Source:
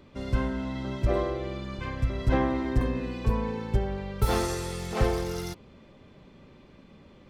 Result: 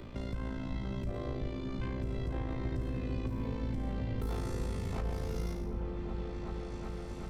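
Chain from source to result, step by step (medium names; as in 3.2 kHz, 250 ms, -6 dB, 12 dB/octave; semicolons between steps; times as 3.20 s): spectral sustain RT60 0.59 s; bass shelf 87 Hz +7 dB; peak limiter -20.5 dBFS, peak gain reduction 14 dB; AM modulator 55 Hz, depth 55%; delay with an opening low-pass 375 ms, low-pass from 200 Hz, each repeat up 1 oct, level 0 dB; three bands compressed up and down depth 70%; trim -7.5 dB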